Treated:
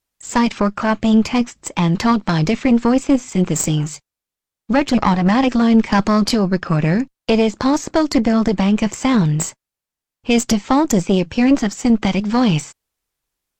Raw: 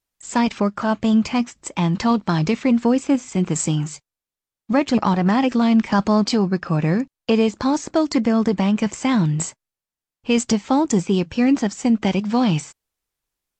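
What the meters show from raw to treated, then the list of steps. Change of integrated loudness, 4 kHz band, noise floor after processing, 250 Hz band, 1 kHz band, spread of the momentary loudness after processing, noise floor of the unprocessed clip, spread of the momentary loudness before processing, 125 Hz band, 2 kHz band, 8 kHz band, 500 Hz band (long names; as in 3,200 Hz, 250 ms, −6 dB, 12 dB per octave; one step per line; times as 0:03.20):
+3.0 dB, +4.0 dB, below −85 dBFS, +3.0 dB, +3.0 dB, 5 LU, below −85 dBFS, 5 LU, +3.0 dB, +4.5 dB, +3.5 dB, +2.5 dB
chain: tube saturation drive 12 dB, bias 0.75
level +8 dB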